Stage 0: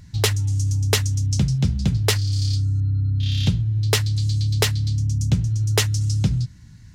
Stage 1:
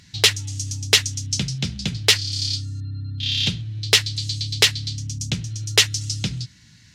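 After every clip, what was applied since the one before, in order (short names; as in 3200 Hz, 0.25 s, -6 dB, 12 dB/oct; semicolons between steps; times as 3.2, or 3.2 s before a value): weighting filter D; gain -2 dB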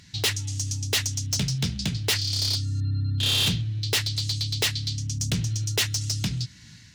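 AGC gain up to 6 dB; overloaded stage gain 19 dB; gain -1 dB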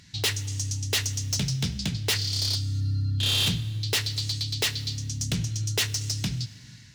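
plate-style reverb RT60 1.9 s, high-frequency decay 0.95×, DRR 15.5 dB; gain -1.5 dB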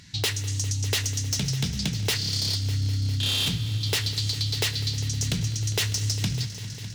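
compressor, threshold -27 dBFS, peak gain reduction 5 dB; multi-head echo 0.201 s, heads all three, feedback 70%, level -19 dB; gain +3.5 dB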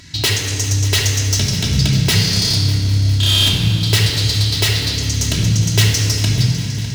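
overloaded stage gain 22 dB; shoebox room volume 3900 m³, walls mixed, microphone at 2.9 m; gain +7.5 dB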